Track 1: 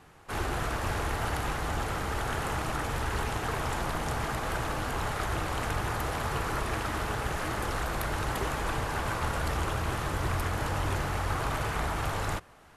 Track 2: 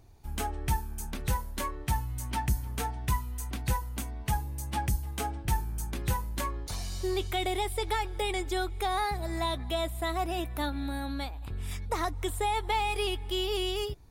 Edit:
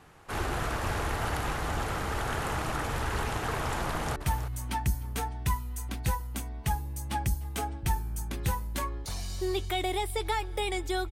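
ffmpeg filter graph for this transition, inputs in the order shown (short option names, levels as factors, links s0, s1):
-filter_complex "[0:a]apad=whole_dur=11.11,atrim=end=11.11,atrim=end=4.162[s0];[1:a]atrim=start=1.778:end=8.73[s1];[s0][s1]acrossfade=d=0.004:c1=hsin:c2=hsin,asplit=2[s2][s3];[s3]afade=t=in:st=3.88:d=0.01,afade=t=out:st=4.16:d=0.01,aecho=0:1:320|640|960:0.298538|0.0597077|0.0119415[s4];[s2][s4]amix=inputs=2:normalize=0"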